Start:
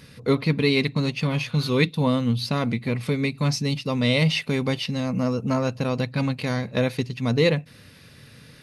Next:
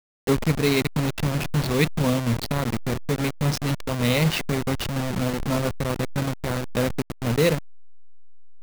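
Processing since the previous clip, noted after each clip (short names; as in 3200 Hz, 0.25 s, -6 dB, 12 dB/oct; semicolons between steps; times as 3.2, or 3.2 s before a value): level-crossing sampler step -21 dBFS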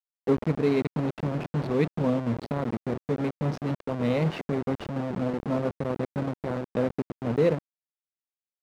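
band-pass 400 Hz, Q 0.57; gain -1 dB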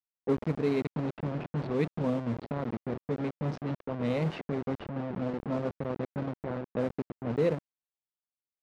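low-pass opened by the level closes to 880 Hz, open at -20 dBFS; gain -4.5 dB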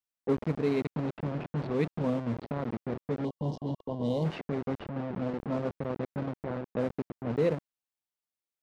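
spectral gain 3.25–4.24, 1100–2800 Hz -21 dB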